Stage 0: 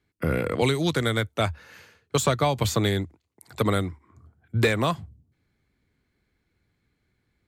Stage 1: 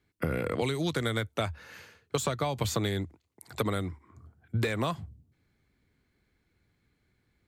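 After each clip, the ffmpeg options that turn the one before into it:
-af "acompressor=threshold=-26dB:ratio=6"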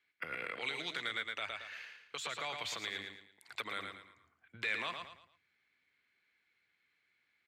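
-filter_complex "[0:a]asplit=2[a][b];[b]aecho=0:1:112|224|336|448:0.422|0.143|0.0487|0.0166[c];[a][c]amix=inputs=2:normalize=0,alimiter=limit=-22dB:level=0:latency=1:release=105,bandpass=f=2.4k:t=q:w=1.6:csg=0,volume=4dB"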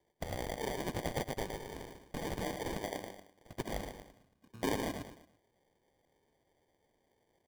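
-af "acrusher=samples=33:mix=1:aa=0.000001,volume=2.5dB"

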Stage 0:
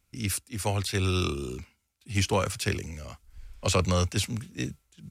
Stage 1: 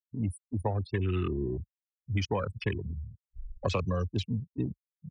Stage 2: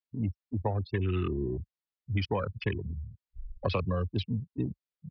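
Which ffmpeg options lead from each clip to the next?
-af "afftfilt=real='re*gte(hypot(re,im),0.0631)':imag='im*gte(hypot(re,im),0.0631)':win_size=1024:overlap=0.75,afwtdn=0.0141,acompressor=threshold=-31dB:ratio=10,volume=5dB"
-af "aresample=11025,aresample=44100"

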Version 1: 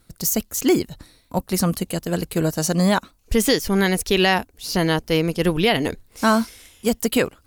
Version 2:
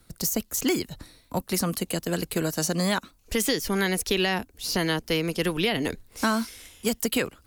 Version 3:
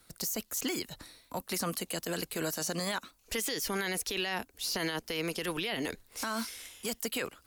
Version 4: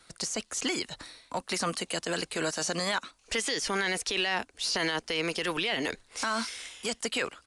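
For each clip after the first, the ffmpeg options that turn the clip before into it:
-filter_complex "[0:a]acrossover=split=210|460|1100[a][b][c][d];[a]acompressor=threshold=-36dB:ratio=4[e];[b]acompressor=threshold=-28dB:ratio=4[f];[c]acompressor=threshold=-36dB:ratio=4[g];[d]acompressor=threshold=-25dB:ratio=4[h];[e][f][g][h]amix=inputs=4:normalize=0"
-af "lowshelf=f=330:g=-11.5,alimiter=limit=-24dB:level=0:latency=1:release=27"
-filter_complex "[0:a]asplit=2[a][b];[b]highpass=f=720:p=1,volume=5dB,asoftclip=type=tanh:threshold=-23.5dB[c];[a][c]amix=inputs=2:normalize=0,lowpass=f=5.6k:p=1,volume=-6dB,aresample=22050,aresample=44100,volume=5dB"

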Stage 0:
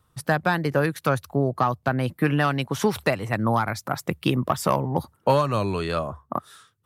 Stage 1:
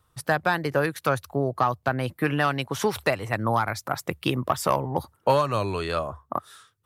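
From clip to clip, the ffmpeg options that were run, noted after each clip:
-af "equalizer=f=190:w=1.1:g=-6.5"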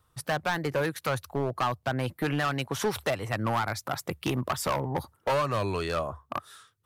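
-af "asoftclip=type=hard:threshold=-20.5dB,volume=-1.5dB"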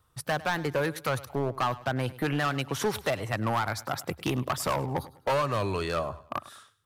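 -af "aecho=1:1:102|204|306:0.126|0.0428|0.0146"

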